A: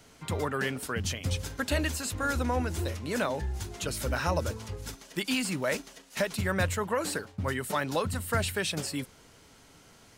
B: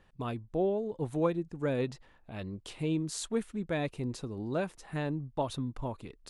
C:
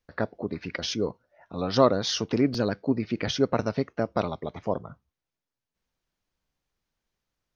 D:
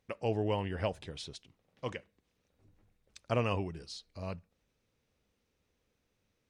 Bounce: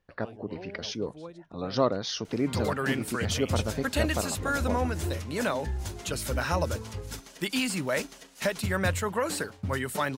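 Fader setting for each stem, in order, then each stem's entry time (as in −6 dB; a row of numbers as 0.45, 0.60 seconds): +1.0, −14.5, −5.0, −16.0 decibels; 2.25, 0.00, 0.00, 0.00 seconds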